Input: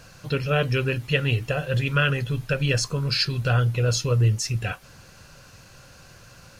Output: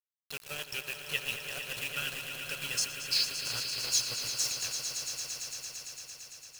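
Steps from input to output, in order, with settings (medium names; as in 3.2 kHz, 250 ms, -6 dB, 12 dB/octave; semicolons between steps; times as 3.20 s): dynamic bell 1.1 kHz, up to -6 dB, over -39 dBFS, Q 1.2; rotary cabinet horn 7.5 Hz; pre-emphasis filter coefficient 0.97; bit crusher 7-bit; on a send: echo with a slow build-up 113 ms, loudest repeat 5, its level -10 dB; on the sum: trim +3 dB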